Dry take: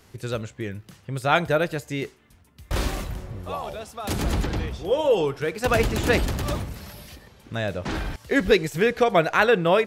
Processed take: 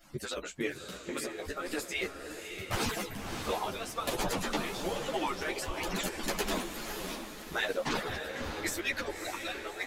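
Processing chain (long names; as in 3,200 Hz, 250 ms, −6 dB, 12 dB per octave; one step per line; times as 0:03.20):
harmonic-percussive split with one part muted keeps percussive
dynamic equaliser 140 Hz, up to −8 dB, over −44 dBFS, Q 0.7
compressor whose output falls as the input rises −32 dBFS, ratio −0.5
flanger 1 Hz, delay 5.7 ms, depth 8 ms, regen −37%
feedback delay with all-pass diffusion 588 ms, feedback 43%, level −6.5 dB
string-ensemble chorus
level +5 dB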